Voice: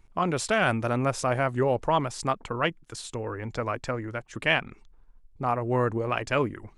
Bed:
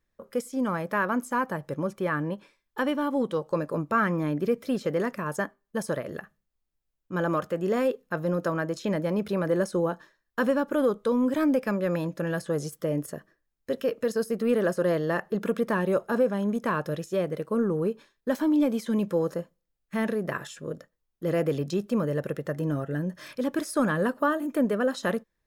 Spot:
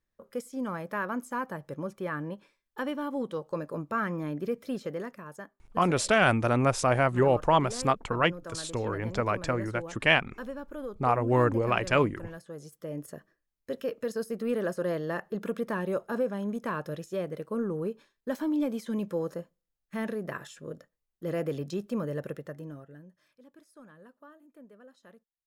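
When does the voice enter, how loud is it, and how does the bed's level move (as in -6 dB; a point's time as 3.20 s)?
5.60 s, +1.5 dB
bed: 4.79 s -6 dB
5.37 s -14.5 dB
12.56 s -14.5 dB
13.18 s -5.5 dB
22.30 s -5.5 dB
23.34 s -28 dB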